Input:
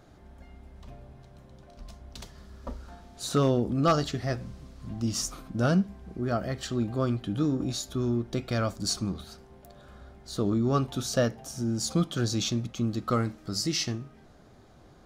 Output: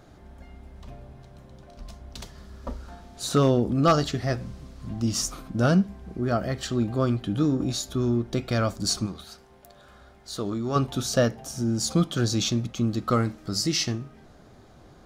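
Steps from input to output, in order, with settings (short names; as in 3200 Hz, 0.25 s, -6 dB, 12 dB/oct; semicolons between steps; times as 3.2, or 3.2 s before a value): 9.06–10.76 low shelf 480 Hz -9 dB; gain +3.5 dB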